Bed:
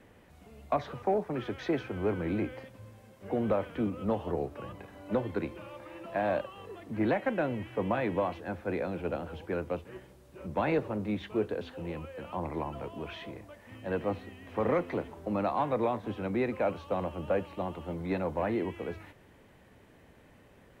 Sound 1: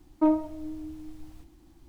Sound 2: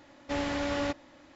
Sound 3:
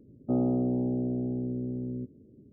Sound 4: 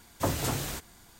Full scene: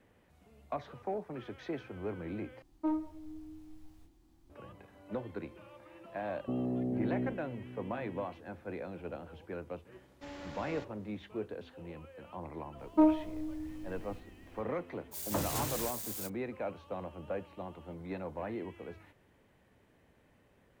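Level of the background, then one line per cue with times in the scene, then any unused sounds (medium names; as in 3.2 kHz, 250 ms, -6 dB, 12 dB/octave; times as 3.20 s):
bed -8.5 dB
2.62 s: replace with 1 -11 dB + doubling 25 ms -4 dB
6.19 s: add 3 -3.5 dB + level held to a coarse grid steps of 15 dB
9.92 s: add 2 -13.5 dB + single-diode clipper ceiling -29 dBFS
12.76 s: add 1 -2 dB, fades 0.05 s
15.11 s: add 4 -6.5 dB, fades 0.05 s + zero-crossing glitches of -29 dBFS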